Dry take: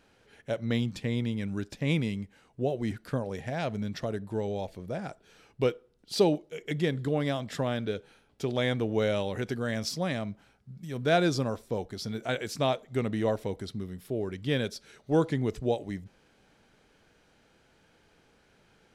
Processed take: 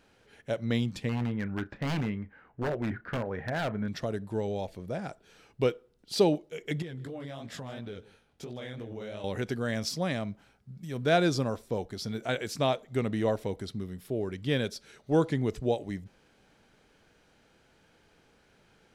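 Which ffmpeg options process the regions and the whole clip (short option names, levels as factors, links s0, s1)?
-filter_complex "[0:a]asettb=1/sr,asplit=3[s0][s1][s2];[s0]atrim=end=1.094[s3];[s1]atrim=start=1.09:end=3.88,asetpts=PTS-STARTPTS,afade=t=in:d=0.004:c=qsin,afade=t=out:st=2.786:d=0.004:c=qsin,lowpass=f=1600:t=q:w=2.5,asplit=2[s4][s5];[s5]adelay=33,volume=0.211[s6];[s4][s6]amix=inputs=2:normalize=0,atrim=end_sample=123039,aeval=exprs='0.0596*(abs(mod(val(0)/0.0596+3,4)-2)-1)':c=same[s7];[s2]atrim=start=3.876[s8];[s3][s7]acrossfade=d=0.004:c1=hsin:c2=qsin[s9];[s9][s8]acrossfade=d=0.004:c1=qsin:c2=hsin,asettb=1/sr,asplit=3[s10][s11][s12];[s10]atrim=end=6.824[s13];[s11]atrim=start=6.82:end=9.24,asetpts=PTS-STARTPTS,afade=t=in:d=0.004:c=qsin,afade=t=out:st=2.416:d=0.004:c=qsin,flanger=delay=16.5:depth=6.8:speed=2.9,acompressor=threshold=0.0158:ratio=8:attack=3.2:release=140:knee=1:detection=peak,aecho=1:1:158:0.112,atrim=end_sample=106722[s14];[s12]atrim=start=9.236[s15];[s13][s14]acrossfade=d=0.004:c1=hsin:c2=qsin[s16];[s16][s15]acrossfade=d=0.004:c1=qsin:c2=hsin"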